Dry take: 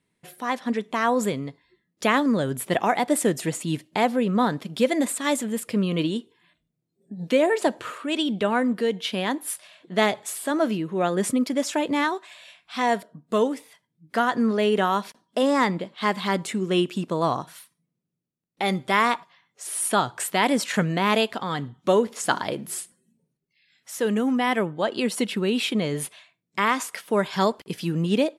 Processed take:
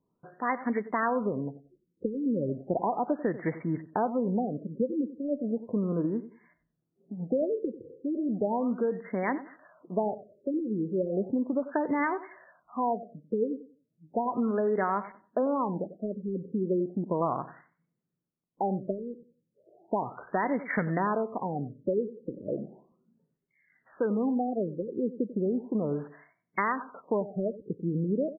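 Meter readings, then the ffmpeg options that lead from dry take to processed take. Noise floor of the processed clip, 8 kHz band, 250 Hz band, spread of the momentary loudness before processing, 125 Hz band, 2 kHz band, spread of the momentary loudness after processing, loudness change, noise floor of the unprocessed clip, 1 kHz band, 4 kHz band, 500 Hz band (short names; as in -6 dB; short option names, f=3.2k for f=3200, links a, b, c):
-80 dBFS, under -40 dB, -5.5 dB, 9 LU, -5.0 dB, -11.0 dB, 8 LU, -6.5 dB, -79 dBFS, -7.0 dB, under -40 dB, -5.5 dB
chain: -filter_complex "[0:a]acompressor=threshold=-23dB:ratio=6,equalizer=f=96:w=0.6:g=-4,asplit=2[a][b];[b]adelay=93,lowpass=f=2k:p=1,volume=-14.5dB,asplit=2[c][d];[d]adelay=93,lowpass=f=2k:p=1,volume=0.26,asplit=2[e][f];[f]adelay=93,lowpass=f=2k:p=1,volume=0.26[g];[c][e][g]amix=inputs=3:normalize=0[h];[a][h]amix=inputs=2:normalize=0,afftfilt=real='re*lt(b*sr/1024,520*pow(2300/520,0.5+0.5*sin(2*PI*0.35*pts/sr)))':imag='im*lt(b*sr/1024,520*pow(2300/520,0.5+0.5*sin(2*PI*0.35*pts/sr)))':win_size=1024:overlap=0.75"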